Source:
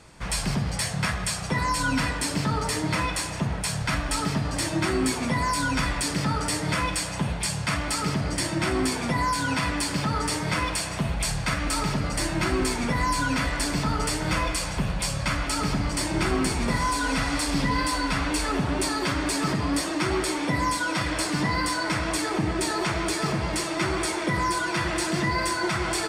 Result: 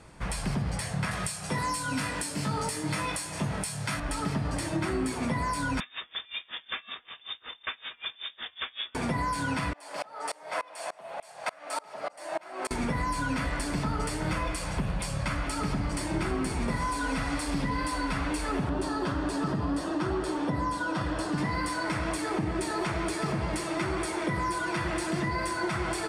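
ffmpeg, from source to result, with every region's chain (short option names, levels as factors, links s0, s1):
-filter_complex "[0:a]asettb=1/sr,asplit=3[s0][s1][s2];[s0]atrim=end=1.114[s3];[s1]atrim=start=1.11:end=4,asetpts=PTS-STARTPTS,afade=t=in:d=0.004:c=qsin,afade=t=out:st=2.886:d=0.004:c=qsin,highpass=100,highshelf=f=3800:g=10.5,asplit=2[s4][s5];[s5]adelay=20,volume=0.596[s6];[s4][s6]amix=inputs=2:normalize=0,atrim=end_sample=127449[s7];[s2]atrim=start=3.996[s8];[s3][s7]acrossfade=d=0.004:c1=hsin:c2=qsin[s9];[s9][s8]acrossfade=d=0.004:c1=qsin:c2=hsin,asettb=1/sr,asplit=3[s10][s11][s12];[s10]atrim=end=5.804[s13];[s11]atrim=start=5.8:end=8.95,asetpts=PTS-STARTPTS,afade=t=in:d=0.004:c=qsin,afade=t=out:st=3.146:d=0.004:c=qsin,aeval=exprs='sgn(val(0))*max(abs(val(0))-0.0112,0)':c=same,lowpass=f=3100:t=q:w=0.5098,lowpass=f=3100:t=q:w=0.6013,lowpass=f=3100:t=q:w=0.9,lowpass=f=3100:t=q:w=2.563,afreqshift=-3700,aeval=exprs='val(0)*pow(10,-27*(0.5-0.5*cos(2*PI*5.3*n/s))/20)':c=same[s14];[s12]atrim=start=8.946[s15];[s13][s14]acrossfade=d=0.004:c1=hsin:c2=qsin[s16];[s16][s15]acrossfade=d=0.004:c1=qsin:c2=hsin,asettb=1/sr,asplit=3[s17][s18][s19];[s17]atrim=end=9.734[s20];[s18]atrim=start=9.73:end=12.71,asetpts=PTS-STARTPTS,afade=t=in:d=0.004:c=qsin,afade=t=out:st=2.976:d=0.004:c=qsin,highpass=f=650:t=q:w=3.3,aeval=exprs='val(0)*pow(10,-29*if(lt(mod(-3.4*n/s,1),2*abs(-3.4)/1000),1-mod(-3.4*n/s,1)/(2*abs(-3.4)/1000),(mod(-3.4*n/s,1)-2*abs(-3.4)/1000)/(1-2*abs(-3.4)/1000))/20)':c=same[s21];[s19]atrim=start=12.706[s22];[s20][s21]acrossfade=d=0.004:c1=hsin:c2=qsin[s23];[s23][s22]acrossfade=d=0.004:c1=qsin:c2=hsin,asettb=1/sr,asplit=3[s24][s25][s26];[s24]atrim=end=18.694[s27];[s25]atrim=start=18.69:end=21.38,asetpts=PTS-STARTPTS,afade=t=in:d=0.004:c=qsin,afade=t=out:st=2.686:d=0.004:c=qsin,lowpass=f=3400:p=1,equalizer=f=2200:w=4:g=-11.5[s28];[s26]atrim=start=21.376[s29];[s27][s28]acrossfade=d=0.004:c1=hsin:c2=qsin[s30];[s30][s29]acrossfade=d=0.004:c1=qsin:c2=hsin,equalizer=f=10000:w=1.8:g=8,acompressor=threshold=0.0562:ratio=6,highshelf=f=3400:g=-10"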